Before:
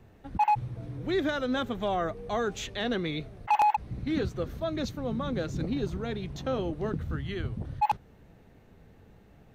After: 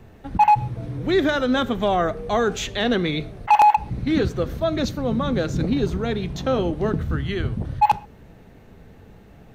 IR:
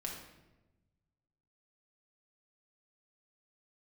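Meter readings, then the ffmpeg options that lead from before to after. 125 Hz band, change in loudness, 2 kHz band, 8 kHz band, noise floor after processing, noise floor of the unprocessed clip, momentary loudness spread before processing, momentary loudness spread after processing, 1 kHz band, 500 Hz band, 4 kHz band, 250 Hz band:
+8.5 dB, +9.0 dB, +8.5 dB, can't be measured, −48 dBFS, −56 dBFS, 8 LU, 9 LU, +9.0 dB, +9.0 dB, +9.0 dB, +9.0 dB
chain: -filter_complex "[0:a]asplit=2[link_01][link_02];[1:a]atrim=start_sample=2205,atrim=end_sample=6174[link_03];[link_02][link_03]afir=irnorm=-1:irlink=0,volume=-12.5dB[link_04];[link_01][link_04]amix=inputs=2:normalize=0,volume=7.5dB"

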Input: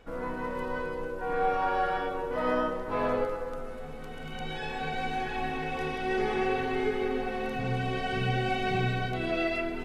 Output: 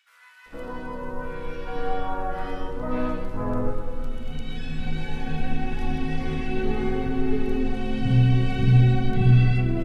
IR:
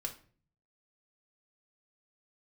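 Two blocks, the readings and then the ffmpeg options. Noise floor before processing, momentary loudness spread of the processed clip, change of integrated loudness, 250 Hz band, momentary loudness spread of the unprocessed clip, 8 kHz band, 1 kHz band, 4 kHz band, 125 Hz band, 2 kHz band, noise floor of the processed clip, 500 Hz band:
−39 dBFS, 17 LU, +5.5 dB, +7.0 dB, 8 LU, can't be measured, −3.0 dB, −0.5 dB, +15.0 dB, −3.0 dB, −49 dBFS, −1.0 dB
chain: -filter_complex "[0:a]asubboost=boost=6:cutoff=230,acrossover=split=1700[link_01][link_02];[link_01]adelay=460[link_03];[link_03][link_02]amix=inputs=2:normalize=0,asplit=2[link_04][link_05];[1:a]atrim=start_sample=2205[link_06];[link_05][link_06]afir=irnorm=-1:irlink=0,volume=-6.5dB[link_07];[link_04][link_07]amix=inputs=2:normalize=0,volume=-2.5dB"

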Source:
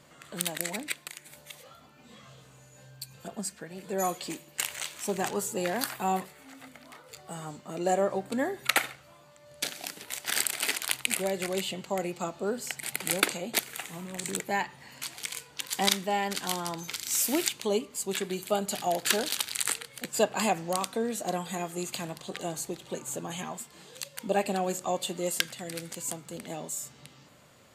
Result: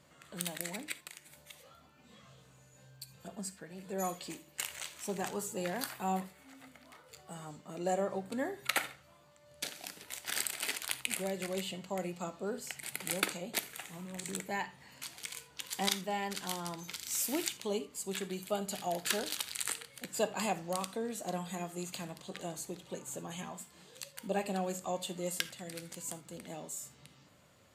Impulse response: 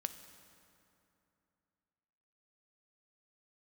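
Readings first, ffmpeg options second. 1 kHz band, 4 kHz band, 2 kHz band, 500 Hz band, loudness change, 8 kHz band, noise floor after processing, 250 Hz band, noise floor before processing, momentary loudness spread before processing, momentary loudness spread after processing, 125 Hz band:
−7.0 dB, −7.0 dB, −7.0 dB, −7.0 dB, −6.5 dB, −7.0 dB, −62 dBFS, −5.5 dB, −56 dBFS, 14 LU, 14 LU, −4.0 dB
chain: -filter_complex "[0:a]equalizer=frequency=77:width_type=o:width=0.77:gain=6[link_01];[1:a]atrim=start_sample=2205,atrim=end_sample=3969[link_02];[link_01][link_02]afir=irnorm=-1:irlink=0,volume=-5.5dB"

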